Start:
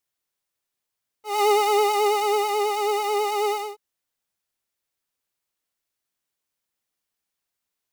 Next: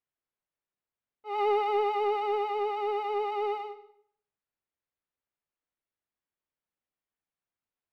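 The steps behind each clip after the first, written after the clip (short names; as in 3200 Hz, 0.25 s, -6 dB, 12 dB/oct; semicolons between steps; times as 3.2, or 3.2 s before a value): in parallel at -11 dB: soft clip -19.5 dBFS, distortion -12 dB; on the sum: air absorption 430 m; reverb RT60 0.60 s, pre-delay 95 ms, DRR 14.5 dB; gain -6.5 dB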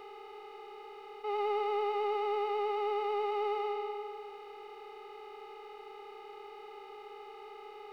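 per-bin compression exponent 0.2; notch 1900 Hz, Q 19; gain -8.5 dB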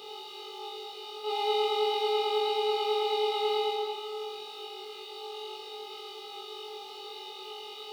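HPF 120 Hz 12 dB/oct; resonant high shelf 2600 Hz +11 dB, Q 3; flutter echo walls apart 3.6 m, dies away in 0.71 s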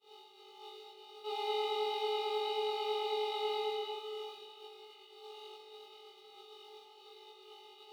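expander -36 dBFS; notch 5000 Hz, Q 12; spring tank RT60 3.8 s, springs 37 ms, chirp 55 ms, DRR 6.5 dB; gain -7.5 dB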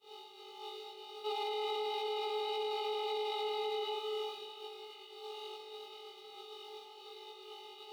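limiter -33.5 dBFS, peak gain reduction 10 dB; gain +4.5 dB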